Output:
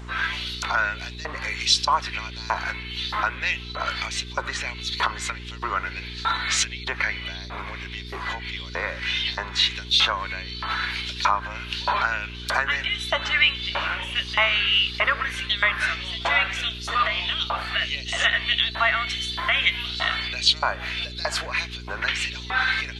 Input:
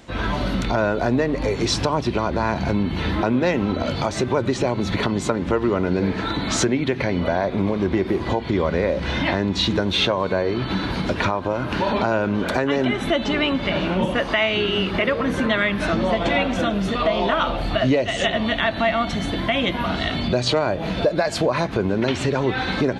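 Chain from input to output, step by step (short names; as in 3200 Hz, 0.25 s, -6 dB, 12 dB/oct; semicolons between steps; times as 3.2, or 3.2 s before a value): LFO high-pass saw up 1.6 Hz 980–4700 Hz; buzz 60 Hz, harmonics 7, -38 dBFS -6 dB/oct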